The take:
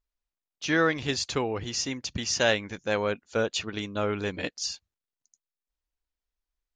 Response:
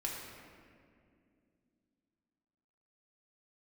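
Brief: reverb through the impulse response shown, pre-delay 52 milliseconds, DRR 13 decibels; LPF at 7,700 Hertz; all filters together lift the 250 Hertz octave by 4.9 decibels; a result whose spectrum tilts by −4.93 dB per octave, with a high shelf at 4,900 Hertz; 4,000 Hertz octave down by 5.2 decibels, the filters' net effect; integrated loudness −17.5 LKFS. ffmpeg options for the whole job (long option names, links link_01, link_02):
-filter_complex "[0:a]lowpass=7700,equalizer=frequency=250:width_type=o:gain=6.5,equalizer=frequency=4000:width_type=o:gain=-4,highshelf=frequency=4900:gain=-5,asplit=2[link_01][link_02];[1:a]atrim=start_sample=2205,adelay=52[link_03];[link_02][link_03]afir=irnorm=-1:irlink=0,volume=-15dB[link_04];[link_01][link_04]amix=inputs=2:normalize=0,volume=10dB"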